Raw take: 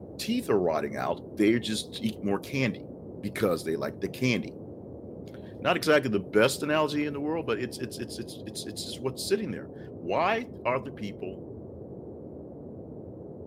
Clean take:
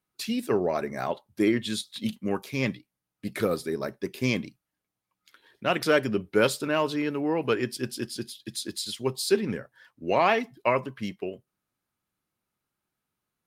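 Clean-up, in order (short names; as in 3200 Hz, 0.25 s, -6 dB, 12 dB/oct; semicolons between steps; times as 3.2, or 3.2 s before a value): clip repair -10.5 dBFS; noise print and reduce 30 dB; gain 0 dB, from 7.04 s +4 dB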